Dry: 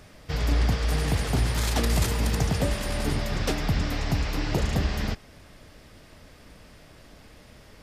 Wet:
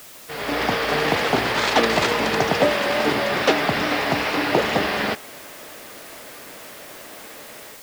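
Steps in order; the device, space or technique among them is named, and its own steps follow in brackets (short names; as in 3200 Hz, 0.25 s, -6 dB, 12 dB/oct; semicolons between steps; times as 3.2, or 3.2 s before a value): dictaphone (BPF 380–3400 Hz; AGC gain up to 12 dB; wow and flutter; white noise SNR 20 dB); gain +1.5 dB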